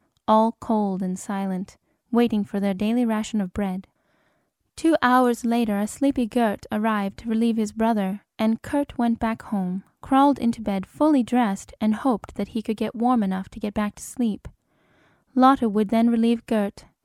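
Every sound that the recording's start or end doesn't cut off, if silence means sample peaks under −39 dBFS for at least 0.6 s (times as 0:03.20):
0:04.78–0:14.48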